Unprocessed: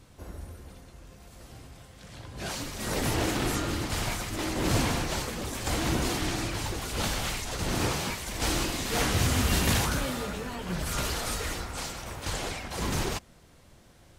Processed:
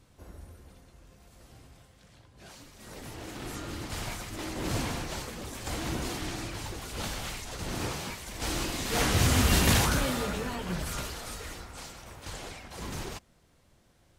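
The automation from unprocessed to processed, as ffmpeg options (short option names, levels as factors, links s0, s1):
-af "volume=3.55,afade=t=out:st=1.75:d=0.55:silence=0.354813,afade=t=in:st=3.21:d=0.75:silence=0.334965,afade=t=in:st=8.39:d=0.96:silence=0.421697,afade=t=out:st=10.48:d=0.63:silence=0.316228"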